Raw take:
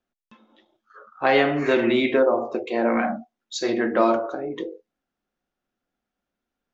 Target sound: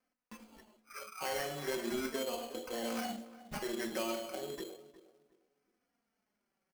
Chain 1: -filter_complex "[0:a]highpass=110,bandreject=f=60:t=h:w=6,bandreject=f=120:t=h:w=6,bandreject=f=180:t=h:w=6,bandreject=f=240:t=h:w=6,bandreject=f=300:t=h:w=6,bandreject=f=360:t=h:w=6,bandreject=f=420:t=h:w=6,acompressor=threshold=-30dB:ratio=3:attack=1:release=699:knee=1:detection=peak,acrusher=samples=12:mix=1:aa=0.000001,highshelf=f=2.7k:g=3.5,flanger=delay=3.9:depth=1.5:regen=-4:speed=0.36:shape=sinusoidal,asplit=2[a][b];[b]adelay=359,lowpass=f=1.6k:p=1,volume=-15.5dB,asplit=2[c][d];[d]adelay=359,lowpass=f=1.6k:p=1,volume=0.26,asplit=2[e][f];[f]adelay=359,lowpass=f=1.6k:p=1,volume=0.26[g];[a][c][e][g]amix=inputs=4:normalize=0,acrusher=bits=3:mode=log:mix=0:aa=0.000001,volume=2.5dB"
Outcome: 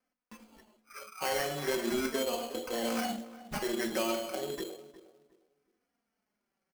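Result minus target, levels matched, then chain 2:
compressor: peak gain reduction -5 dB
-filter_complex "[0:a]highpass=110,bandreject=f=60:t=h:w=6,bandreject=f=120:t=h:w=6,bandreject=f=180:t=h:w=6,bandreject=f=240:t=h:w=6,bandreject=f=300:t=h:w=6,bandreject=f=360:t=h:w=6,bandreject=f=420:t=h:w=6,acompressor=threshold=-37.5dB:ratio=3:attack=1:release=699:knee=1:detection=peak,acrusher=samples=12:mix=1:aa=0.000001,highshelf=f=2.7k:g=3.5,flanger=delay=3.9:depth=1.5:regen=-4:speed=0.36:shape=sinusoidal,asplit=2[a][b];[b]adelay=359,lowpass=f=1.6k:p=1,volume=-15.5dB,asplit=2[c][d];[d]adelay=359,lowpass=f=1.6k:p=1,volume=0.26,asplit=2[e][f];[f]adelay=359,lowpass=f=1.6k:p=1,volume=0.26[g];[a][c][e][g]amix=inputs=4:normalize=0,acrusher=bits=3:mode=log:mix=0:aa=0.000001,volume=2.5dB"

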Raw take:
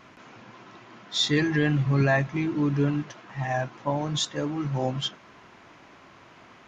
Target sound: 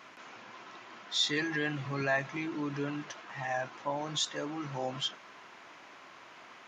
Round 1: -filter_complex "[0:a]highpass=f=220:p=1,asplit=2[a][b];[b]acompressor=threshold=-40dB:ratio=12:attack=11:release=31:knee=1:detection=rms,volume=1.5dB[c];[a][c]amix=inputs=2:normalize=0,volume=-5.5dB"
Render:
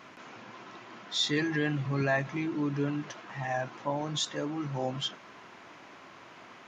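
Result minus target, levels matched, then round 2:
250 Hz band +3.0 dB
-filter_complex "[0:a]highpass=f=680:p=1,asplit=2[a][b];[b]acompressor=threshold=-40dB:ratio=12:attack=11:release=31:knee=1:detection=rms,volume=1.5dB[c];[a][c]amix=inputs=2:normalize=0,volume=-5.5dB"

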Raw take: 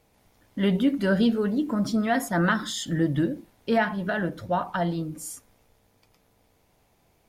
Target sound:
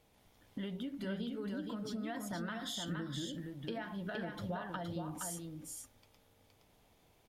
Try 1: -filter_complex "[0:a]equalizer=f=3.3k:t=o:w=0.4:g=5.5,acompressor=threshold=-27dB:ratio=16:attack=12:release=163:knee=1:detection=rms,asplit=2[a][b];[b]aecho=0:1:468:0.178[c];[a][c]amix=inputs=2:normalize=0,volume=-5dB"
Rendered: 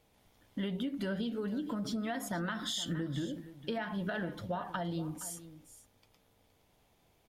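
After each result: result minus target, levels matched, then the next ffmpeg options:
echo-to-direct -11 dB; compressor: peak gain reduction -5.5 dB
-filter_complex "[0:a]equalizer=f=3.3k:t=o:w=0.4:g=5.5,acompressor=threshold=-27dB:ratio=16:attack=12:release=163:knee=1:detection=rms,asplit=2[a][b];[b]aecho=0:1:468:0.631[c];[a][c]amix=inputs=2:normalize=0,volume=-5dB"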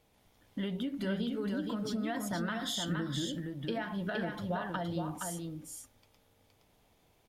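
compressor: peak gain reduction -5.5 dB
-filter_complex "[0:a]equalizer=f=3.3k:t=o:w=0.4:g=5.5,acompressor=threshold=-33dB:ratio=16:attack=12:release=163:knee=1:detection=rms,asplit=2[a][b];[b]aecho=0:1:468:0.631[c];[a][c]amix=inputs=2:normalize=0,volume=-5dB"

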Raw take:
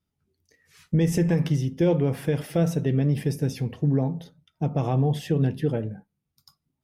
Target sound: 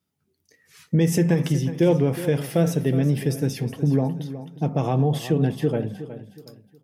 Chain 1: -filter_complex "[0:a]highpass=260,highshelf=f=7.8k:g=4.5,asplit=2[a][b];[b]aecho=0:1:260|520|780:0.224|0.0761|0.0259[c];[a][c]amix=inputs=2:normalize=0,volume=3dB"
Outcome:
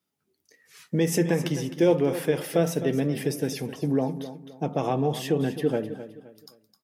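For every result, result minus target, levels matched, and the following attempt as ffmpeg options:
echo 0.106 s early; 125 Hz band -5.0 dB
-filter_complex "[0:a]highpass=260,highshelf=f=7.8k:g=4.5,asplit=2[a][b];[b]aecho=0:1:366|732|1098:0.224|0.0761|0.0259[c];[a][c]amix=inputs=2:normalize=0,volume=3dB"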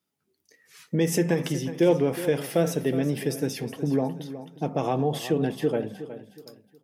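125 Hz band -5.0 dB
-filter_complex "[0:a]highpass=120,highshelf=f=7.8k:g=4.5,asplit=2[a][b];[b]aecho=0:1:366|732|1098:0.224|0.0761|0.0259[c];[a][c]amix=inputs=2:normalize=0,volume=3dB"

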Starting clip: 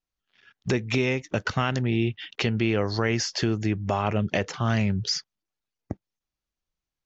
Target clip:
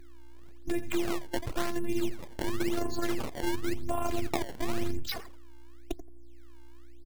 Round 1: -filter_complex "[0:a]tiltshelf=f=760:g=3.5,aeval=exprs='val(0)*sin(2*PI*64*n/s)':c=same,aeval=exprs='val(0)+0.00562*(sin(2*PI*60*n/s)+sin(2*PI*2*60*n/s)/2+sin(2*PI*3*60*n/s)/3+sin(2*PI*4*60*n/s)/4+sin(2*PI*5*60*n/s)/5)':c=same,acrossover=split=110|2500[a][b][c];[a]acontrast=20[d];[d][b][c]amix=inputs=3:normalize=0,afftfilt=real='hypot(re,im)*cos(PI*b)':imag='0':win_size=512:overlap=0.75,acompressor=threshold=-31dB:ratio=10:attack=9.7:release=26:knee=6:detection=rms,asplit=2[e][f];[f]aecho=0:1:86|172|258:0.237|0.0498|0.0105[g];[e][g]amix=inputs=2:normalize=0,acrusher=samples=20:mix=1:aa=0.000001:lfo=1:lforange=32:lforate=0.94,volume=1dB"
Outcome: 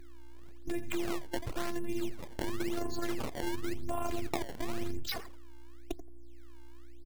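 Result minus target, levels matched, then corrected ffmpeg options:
compressor: peak gain reduction +5.5 dB
-filter_complex "[0:a]tiltshelf=f=760:g=3.5,aeval=exprs='val(0)*sin(2*PI*64*n/s)':c=same,aeval=exprs='val(0)+0.00562*(sin(2*PI*60*n/s)+sin(2*PI*2*60*n/s)/2+sin(2*PI*3*60*n/s)/3+sin(2*PI*4*60*n/s)/4+sin(2*PI*5*60*n/s)/5)':c=same,acrossover=split=110|2500[a][b][c];[a]acontrast=20[d];[d][b][c]amix=inputs=3:normalize=0,afftfilt=real='hypot(re,im)*cos(PI*b)':imag='0':win_size=512:overlap=0.75,acompressor=threshold=-24.5dB:ratio=10:attack=9.7:release=26:knee=6:detection=rms,asplit=2[e][f];[f]aecho=0:1:86|172|258:0.237|0.0498|0.0105[g];[e][g]amix=inputs=2:normalize=0,acrusher=samples=20:mix=1:aa=0.000001:lfo=1:lforange=32:lforate=0.94,volume=1dB"

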